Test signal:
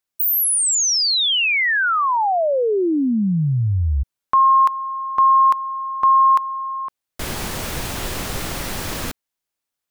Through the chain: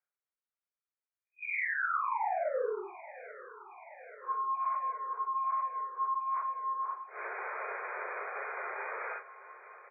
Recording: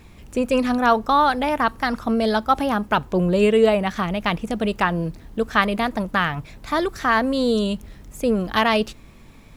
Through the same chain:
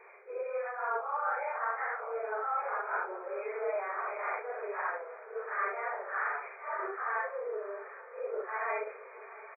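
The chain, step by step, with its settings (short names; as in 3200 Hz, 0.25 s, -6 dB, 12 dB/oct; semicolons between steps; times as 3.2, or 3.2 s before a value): phase scrambler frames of 0.2 s; bell 1400 Hz +6.5 dB 0.48 oct; reverse; compressor 6:1, threshold -32 dBFS; reverse; brick-wall FIR band-pass 380–2500 Hz; doubler 35 ms -10.5 dB; swung echo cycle 0.832 s, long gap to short 3:1, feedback 71%, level -19 dB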